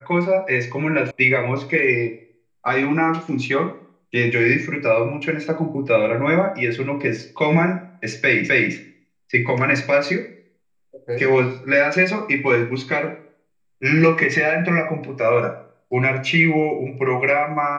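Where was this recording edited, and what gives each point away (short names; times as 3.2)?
1.11 sound cut off
8.49 repeat of the last 0.26 s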